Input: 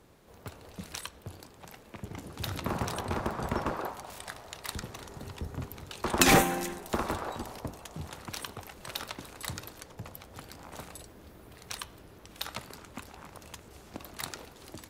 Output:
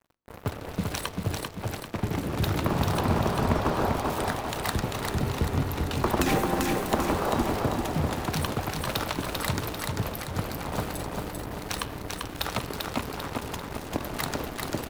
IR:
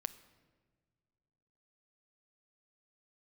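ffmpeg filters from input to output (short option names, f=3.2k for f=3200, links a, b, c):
-filter_complex "[0:a]equalizer=f=2.8k:t=o:w=3:g=-6.5,acompressor=threshold=-37dB:ratio=6,acrusher=bits=7:mix=0:aa=0.5,aecho=1:1:393|786|1179|1572|1965|2358:0.668|0.321|0.154|0.0739|0.0355|0.017,asplit=2[a][b];[1:a]atrim=start_sample=2205,lowpass=5.3k[c];[b][c]afir=irnorm=-1:irlink=0,volume=0.5dB[d];[a][d]amix=inputs=2:normalize=0,volume=9dB"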